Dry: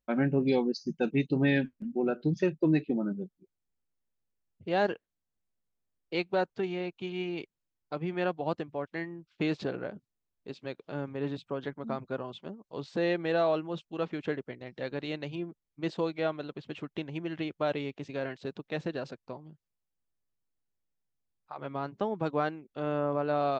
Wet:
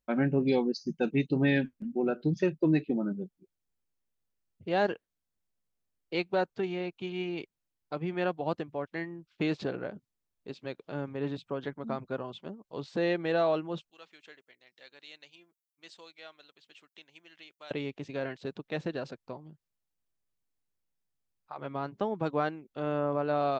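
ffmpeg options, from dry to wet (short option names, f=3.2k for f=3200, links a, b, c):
-filter_complex "[0:a]asettb=1/sr,asplit=3[a][b][c];[a]atrim=end=13.904[d];[b]atrim=start=13.9:end=17.71,asetpts=PTS-STARTPTS,afade=t=in:d=0.004:c=qsin,afade=t=out:st=3.806:d=0.004:c=qsin,aderivative[e];[c]atrim=start=17.706[f];[d][e]acrossfade=d=0.004:c1=hsin:c2=qsin[g];[g][f]acrossfade=d=0.004:c1=qsin:c2=hsin"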